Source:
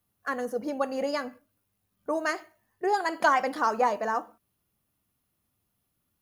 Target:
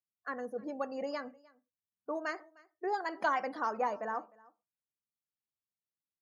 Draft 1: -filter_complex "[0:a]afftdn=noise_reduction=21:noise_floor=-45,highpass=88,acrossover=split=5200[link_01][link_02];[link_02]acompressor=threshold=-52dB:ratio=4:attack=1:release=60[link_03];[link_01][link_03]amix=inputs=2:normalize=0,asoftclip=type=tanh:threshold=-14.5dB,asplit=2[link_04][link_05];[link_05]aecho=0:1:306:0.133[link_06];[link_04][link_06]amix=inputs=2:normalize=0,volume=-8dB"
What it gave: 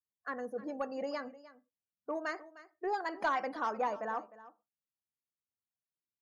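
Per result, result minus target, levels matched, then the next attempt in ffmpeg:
soft clipping: distortion +13 dB; echo-to-direct +7 dB
-filter_complex "[0:a]afftdn=noise_reduction=21:noise_floor=-45,highpass=88,acrossover=split=5200[link_01][link_02];[link_02]acompressor=threshold=-52dB:ratio=4:attack=1:release=60[link_03];[link_01][link_03]amix=inputs=2:normalize=0,asoftclip=type=tanh:threshold=-7dB,asplit=2[link_04][link_05];[link_05]aecho=0:1:306:0.133[link_06];[link_04][link_06]amix=inputs=2:normalize=0,volume=-8dB"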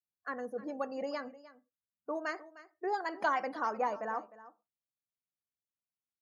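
echo-to-direct +7 dB
-filter_complex "[0:a]afftdn=noise_reduction=21:noise_floor=-45,highpass=88,acrossover=split=5200[link_01][link_02];[link_02]acompressor=threshold=-52dB:ratio=4:attack=1:release=60[link_03];[link_01][link_03]amix=inputs=2:normalize=0,asoftclip=type=tanh:threshold=-7dB,asplit=2[link_04][link_05];[link_05]aecho=0:1:306:0.0596[link_06];[link_04][link_06]amix=inputs=2:normalize=0,volume=-8dB"

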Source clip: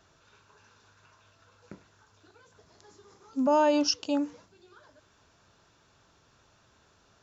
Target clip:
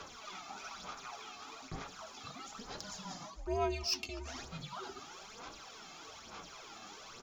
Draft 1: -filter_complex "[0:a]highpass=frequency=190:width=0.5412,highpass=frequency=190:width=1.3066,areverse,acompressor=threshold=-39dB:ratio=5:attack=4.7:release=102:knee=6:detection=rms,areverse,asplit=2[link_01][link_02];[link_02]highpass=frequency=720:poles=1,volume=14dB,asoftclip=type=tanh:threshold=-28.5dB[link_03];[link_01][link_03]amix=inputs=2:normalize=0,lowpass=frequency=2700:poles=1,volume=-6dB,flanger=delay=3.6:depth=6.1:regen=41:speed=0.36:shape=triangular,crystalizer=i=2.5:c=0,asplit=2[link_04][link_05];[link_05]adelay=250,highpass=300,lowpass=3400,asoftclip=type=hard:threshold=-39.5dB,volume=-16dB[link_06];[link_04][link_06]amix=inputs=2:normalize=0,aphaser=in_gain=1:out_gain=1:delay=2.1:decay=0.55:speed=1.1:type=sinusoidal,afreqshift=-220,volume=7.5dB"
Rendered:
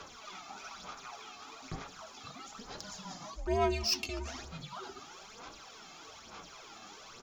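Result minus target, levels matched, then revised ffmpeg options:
downward compressor: peak gain reduction −6 dB
-filter_complex "[0:a]highpass=frequency=190:width=0.5412,highpass=frequency=190:width=1.3066,areverse,acompressor=threshold=-46.5dB:ratio=5:attack=4.7:release=102:knee=6:detection=rms,areverse,asplit=2[link_01][link_02];[link_02]highpass=frequency=720:poles=1,volume=14dB,asoftclip=type=tanh:threshold=-28.5dB[link_03];[link_01][link_03]amix=inputs=2:normalize=0,lowpass=frequency=2700:poles=1,volume=-6dB,flanger=delay=3.6:depth=6.1:regen=41:speed=0.36:shape=triangular,crystalizer=i=2.5:c=0,asplit=2[link_04][link_05];[link_05]adelay=250,highpass=300,lowpass=3400,asoftclip=type=hard:threshold=-39.5dB,volume=-16dB[link_06];[link_04][link_06]amix=inputs=2:normalize=0,aphaser=in_gain=1:out_gain=1:delay=2.1:decay=0.55:speed=1.1:type=sinusoidal,afreqshift=-220,volume=7.5dB"

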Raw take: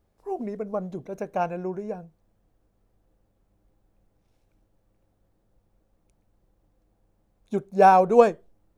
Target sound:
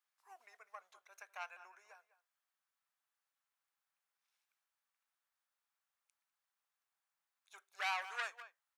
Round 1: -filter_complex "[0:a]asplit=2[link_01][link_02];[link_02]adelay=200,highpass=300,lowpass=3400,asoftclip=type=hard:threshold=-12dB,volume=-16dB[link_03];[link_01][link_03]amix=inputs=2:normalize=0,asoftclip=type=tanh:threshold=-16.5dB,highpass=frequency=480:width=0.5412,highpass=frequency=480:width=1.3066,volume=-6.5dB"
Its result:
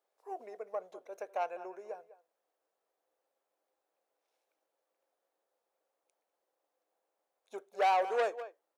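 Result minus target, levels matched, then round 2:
500 Hz band +16.5 dB
-filter_complex "[0:a]asplit=2[link_01][link_02];[link_02]adelay=200,highpass=300,lowpass=3400,asoftclip=type=hard:threshold=-12dB,volume=-16dB[link_03];[link_01][link_03]amix=inputs=2:normalize=0,asoftclip=type=tanh:threshold=-16.5dB,highpass=frequency=1200:width=0.5412,highpass=frequency=1200:width=1.3066,volume=-6.5dB"

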